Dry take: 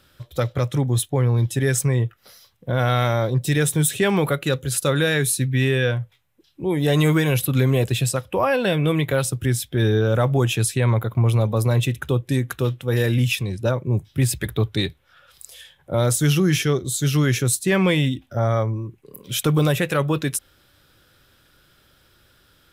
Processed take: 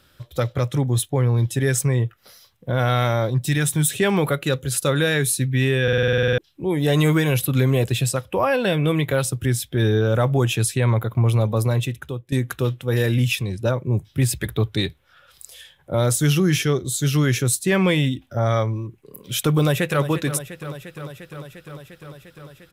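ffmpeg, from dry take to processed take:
-filter_complex "[0:a]asettb=1/sr,asplit=3[s0][s1][s2];[s0]atrim=end=3.304[s3];[s1]atrim=start=3.3:end=3.89,asetpts=PTS-STARTPTS,afade=t=in:d=0.004:c=qsin,afade=t=out:st=0.586:d=0.004:c=qsin,equalizer=f=470:w=2.4:g=-9[s4];[s2]atrim=start=3.886[s5];[s3][s4]acrossfade=d=0.004:c1=hsin:c2=qsin[s6];[s6][s5]acrossfade=d=0.004:c1=qsin:c2=hsin,asettb=1/sr,asplit=3[s7][s8][s9];[s7]atrim=end=18.464[s10];[s8]atrim=start=18.46:end=18.87,asetpts=PTS-STARTPTS,afade=t=in:d=0.004:c=qsin,afade=t=out:st=0.406:d=0.004:c=qsin,equalizer=f=3700:w=0.72:g=8.5[s11];[s9]atrim=start=18.866[s12];[s10][s11]acrossfade=d=0.004:c1=hsin:c2=qsin[s13];[s13][s12]acrossfade=d=0.004:c1=qsin:c2=hsin,asplit=2[s14][s15];[s15]afade=t=in:st=19.56:d=0.01,afade=t=out:st=20.05:d=0.01,aecho=0:1:350|700|1050|1400|1750|2100|2450|2800|3150|3500|3850|4200:0.237137|0.18971|0.151768|0.121414|0.0971315|0.0777052|0.0621641|0.0497313|0.039785|0.031828|0.0254624|0.0203699[s16];[s14][s16]amix=inputs=2:normalize=0,asplit=13[s17][s18][s19][s20][s21][s22][s23][s24][s25][s26][s27][s28][s29];[s17]atrim=end=5.882[s30];[s18]atrim=start=5.828:end=5.882[s31];[s19]atrim=start=5.828:end=5.882[s32];[s20]atrim=start=5.828:end=5.882[s33];[s21]atrim=start=5.828:end=5.882[s34];[s22]atrim=start=5.828:end=5.882[s35];[s23]atrim=start=5.828:end=5.882[s36];[s24]atrim=start=5.828:end=5.882[s37];[s25]atrim=start=5.828:end=5.882[s38];[s26]atrim=start=5.828:end=5.882[s39];[s27]atrim=start=5.828:end=5.882[s40];[s28]atrim=start=6.378:end=12.32,asetpts=PTS-STARTPTS,afade=t=out:st=5.212:d=0.73:silence=0.16788[s41];[s29]atrim=start=12.32,asetpts=PTS-STARTPTS,afade=t=in:d=0.004:c=hsin:silence=0.16788[s42];[s30][s31]acrossfade=d=0.004:c1=hsin:c2=hsin[s43];[s43][s32]acrossfade=d=0.004:c1=hsin:c2=hsin[s44];[s44][s33]acrossfade=d=0.004:c1=hsin:c2=hsin[s45];[s45][s34]acrossfade=d=0.004:c1=hsin:c2=hsin[s46];[s46][s35]acrossfade=d=0.004:c1=hsin:c2=hsin[s47];[s47][s36]acrossfade=d=0.004:c1=hsin:c2=hsin[s48];[s48][s37]acrossfade=d=0.004:c1=hsin:c2=hsin[s49];[s49][s38]acrossfade=d=0.004:c1=hsin:c2=hsin[s50];[s50][s39]acrossfade=d=0.004:c1=hsin:c2=hsin[s51];[s51][s40]acrossfade=d=0.004:c1=hsin:c2=hsin[s52];[s41][s42]concat=n=2:v=0:a=1[s53];[s52][s53]acrossfade=d=0.004:c1=hsin:c2=hsin"

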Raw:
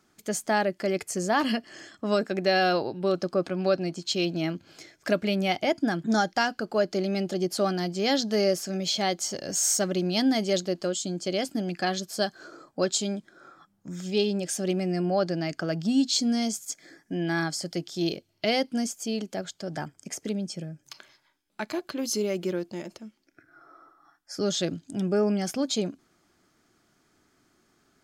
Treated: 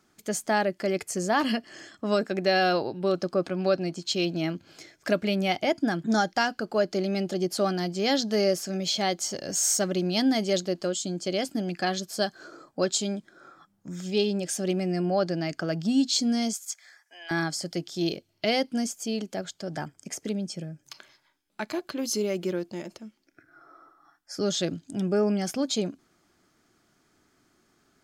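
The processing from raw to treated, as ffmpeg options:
-filter_complex "[0:a]asettb=1/sr,asplit=3[s0][s1][s2];[s0]atrim=end=16.534[s3];[s1]atrim=start=16.53:end=17.31,asetpts=PTS-STARTPTS,afade=t=in:d=0.004:c=qsin,afade=t=out:st=0.776:d=0.004:c=qsin,highpass=f=840:w=0.5412,highpass=f=840:w=1.3066[s4];[s2]atrim=start=17.306[s5];[s3][s4]acrossfade=d=0.004:c1=hsin:c2=qsin[s6];[s6][s5]acrossfade=d=0.004:c1=qsin:c2=hsin"

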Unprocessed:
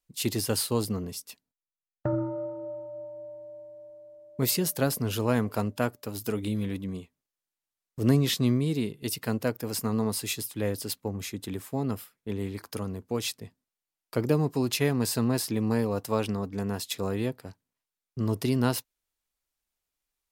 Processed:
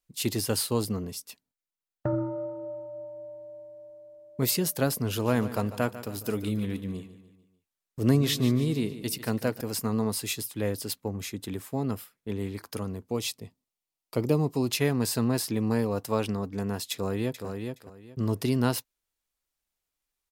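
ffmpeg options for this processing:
-filter_complex "[0:a]asettb=1/sr,asplit=3[s0][s1][s2];[s0]atrim=end=5.034[s3];[s1]atrim=start=5.03:end=9.61,asetpts=PTS-STARTPTS,afade=t=in:d=0.004:c=qsin,afade=t=out:st=4.576:d=0.004:c=qsin,aecho=1:1:147|294|441|588:0.2|0.0938|0.0441|0.0207,atrim=end_sample=201978[s4];[s2]atrim=start=9.606[s5];[s3][s4]acrossfade=d=0.004:c1=hsin:c2=qsin[s6];[s6][s5]acrossfade=d=0.004:c1=qsin:c2=hsin,asettb=1/sr,asplit=3[s7][s8][s9];[s7]atrim=end=13.074[s10];[s8]atrim=start=13.07:end=14.72,asetpts=PTS-STARTPTS,afade=t=in:d=0.004:c=qsin,afade=t=out:st=1.646:d=0.004:c=qsin,equalizer=f=1600:t=o:w=0.38:g=-10[s11];[s9]atrim=start=14.716[s12];[s10][s11]acrossfade=d=0.004:c1=hsin:c2=qsin[s13];[s13][s12]acrossfade=d=0.004:c1=qsin:c2=hsin,asplit=2[s14][s15];[s15]afade=t=in:st=16.92:d=0.01,afade=t=out:st=17.47:d=0.01,aecho=0:1:420|840|1260:0.530884|0.106177|0.0212354[s16];[s14][s16]amix=inputs=2:normalize=0"

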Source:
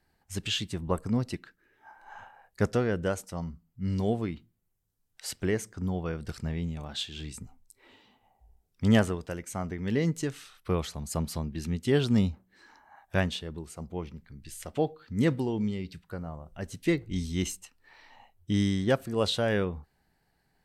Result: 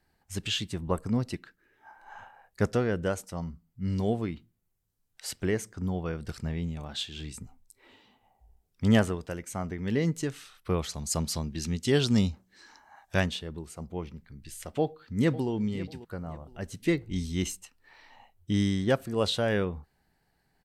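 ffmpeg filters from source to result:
-filter_complex "[0:a]asettb=1/sr,asplit=3[s0][s1][s2];[s0]atrim=end=10.894[s3];[s1]atrim=start=10.89:end=13.26,asetpts=PTS-STARTPTS,afade=t=in:d=0.004:c=qsin,afade=t=out:st=2.366:d=0.004:c=qsin,equalizer=f=5900:w=0.76:g=9.5[s4];[s2]atrim=start=13.256[s5];[s3][s4]acrossfade=d=0.004:c1=hsin:c2=qsin[s6];[s6][s5]acrossfade=d=0.004:c1=qsin:c2=hsin,asplit=2[s7][s8];[s8]afade=t=in:st=14.79:d=0.01,afade=t=out:st=15.5:d=0.01,aecho=0:1:540|1080|1620:0.158489|0.0475468|0.014264[s9];[s7][s9]amix=inputs=2:normalize=0"

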